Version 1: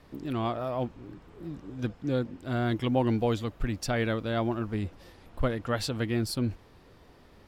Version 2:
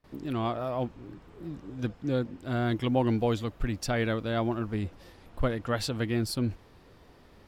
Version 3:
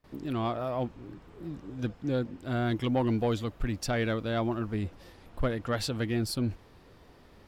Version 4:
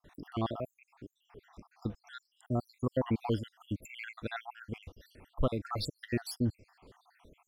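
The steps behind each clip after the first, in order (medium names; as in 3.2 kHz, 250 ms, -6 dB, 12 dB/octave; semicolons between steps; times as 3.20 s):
gate with hold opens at -47 dBFS
saturation -18 dBFS, distortion -21 dB
random holes in the spectrogram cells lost 73%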